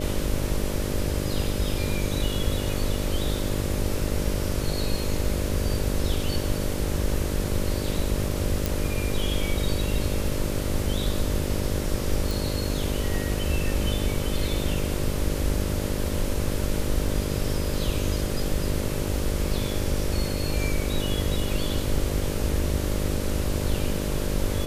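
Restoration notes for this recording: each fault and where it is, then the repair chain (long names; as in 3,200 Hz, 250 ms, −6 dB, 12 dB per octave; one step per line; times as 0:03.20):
mains buzz 50 Hz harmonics 12 −30 dBFS
0:08.66: click
0:12.31: click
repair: click removal
hum removal 50 Hz, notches 12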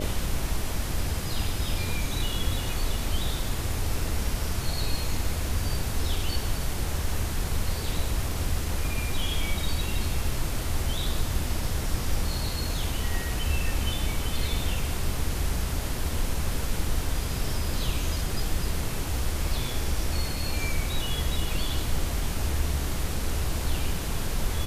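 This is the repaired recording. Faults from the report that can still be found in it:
none of them is left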